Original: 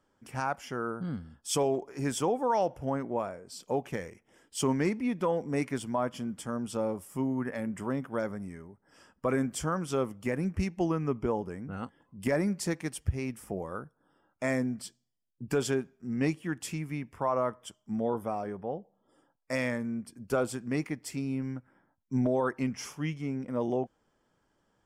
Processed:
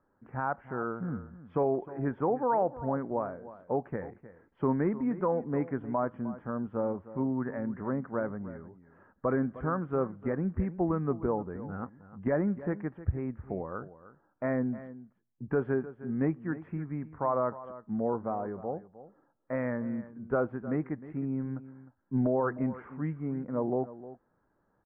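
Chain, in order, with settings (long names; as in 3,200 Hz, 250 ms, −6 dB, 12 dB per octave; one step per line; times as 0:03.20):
Butterworth low-pass 1,700 Hz 36 dB per octave
single-tap delay 308 ms −15.5 dB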